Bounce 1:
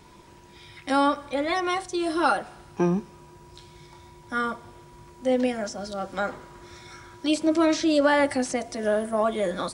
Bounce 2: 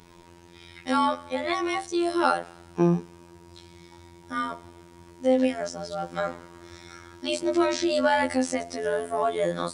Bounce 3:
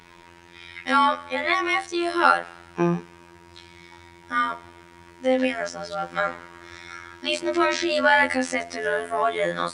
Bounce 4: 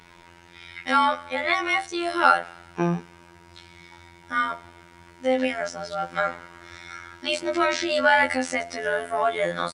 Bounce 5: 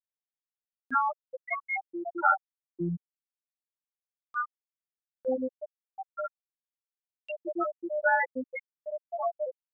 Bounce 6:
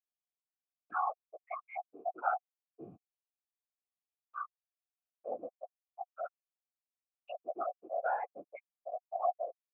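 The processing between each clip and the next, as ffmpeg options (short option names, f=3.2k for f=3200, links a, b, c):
-af "afftfilt=real='hypot(re,im)*cos(PI*b)':imag='0':win_size=2048:overlap=0.75,volume=2.5dB"
-af "equalizer=f=1.9k:w=0.65:g=12,volume=-2dB"
-filter_complex "[0:a]asplit=2[a][b];[b]adelay=13,volume=-12dB[c];[a][c]amix=inputs=2:normalize=0,volume=-1dB"
-af "afftfilt=real='re*gte(hypot(re,im),0.501)':imag='im*gte(hypot(re,im),0.501)':win_size=1024:overlap=0.75,acompressor=mode=upward:threshold=-40dB:ratio=2.5,volume=-4.5dB"
-filter_complex "[0:a]afftfilt=real='hypot(re,im)*cos(2*PI*random(0))':imag='hypot(re,im)*sin(2*PI*random(1))':win_size=512:overlap=0.75,asplit=3[a][b][c];[a]bandpass=f=730:t=q:w=8,volume=0dB[d];[b]bandpass=f=1.09k:t=q:w=8,volume=-6dB[e];[c]bandpass=f=2.44k:t=q:w=8,volume=-9dB[f];[d][e][f]amix=inputs=3:normalize=0,volume=8dB"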